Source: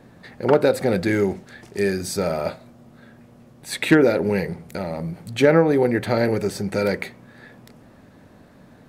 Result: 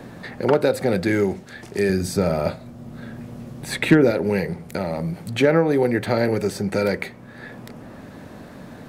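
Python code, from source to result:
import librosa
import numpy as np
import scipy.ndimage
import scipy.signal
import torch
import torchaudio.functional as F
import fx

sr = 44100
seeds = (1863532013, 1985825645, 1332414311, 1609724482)

y = fx.low_shelf(x, sr, hz=230.0, db=9.5, at=(1.89, 4.11))
y = fx.band_squash(y, sr, depth_pct=40)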